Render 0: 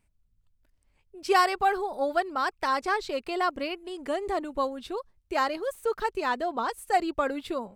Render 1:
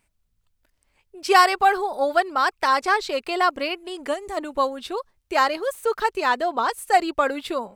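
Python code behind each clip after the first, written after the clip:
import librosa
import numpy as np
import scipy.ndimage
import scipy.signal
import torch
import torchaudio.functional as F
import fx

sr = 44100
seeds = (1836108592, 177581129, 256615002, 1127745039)

y = fx.low_shelf(x, sr, hz=310.0, db=-10.5)
y = fx.spec_box(y, sr, start_s=4.14, length_s=0.23, low_hz=250.0, high_hz=5300.0, gain_db=-8)
y = y * 10.0 ** (8.0 / 20.0)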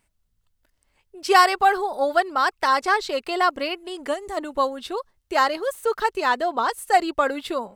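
y = fx.notch(x, sr, hz=2400.0, q=15.0)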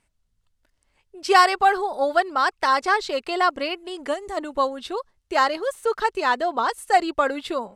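y = scipy.signal.sosfilt(scipy.signal.butter(2, 10000.0, 'lowpass', fs=sr, output='sos'), x)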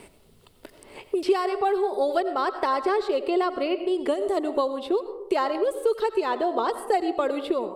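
y = fx.graphic_eq_15(x, sr, hz=(400, 1600, 6300), db=(12, -7, -10))
y = fx.rev_freeverb(y, sr, rt60_s=0.63, hf_ratio=0.4, predelay_ms=50, drr_db=12.0)
y = fx.band_squash(y, sr, depth_pct=100)
y = y * 10.0 ** (-6.0 / 20.0)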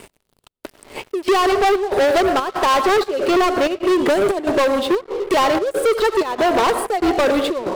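y = fx.step_gate(x, sr, bpm=188, pattern='xxxxxx..', floor_db=-12.0, edge_ms=4.5)
y = fx.leveller(y, sr, passes=5)
y = fx.upward_expand(y, sr, threshold_db=-32.0, expansion=1.5)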